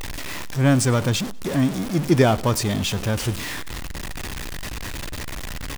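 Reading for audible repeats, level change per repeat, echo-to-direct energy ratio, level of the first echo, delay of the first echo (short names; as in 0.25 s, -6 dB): 2, -11.0 dB, -22.0 dB, -22.5 dB, 97 ms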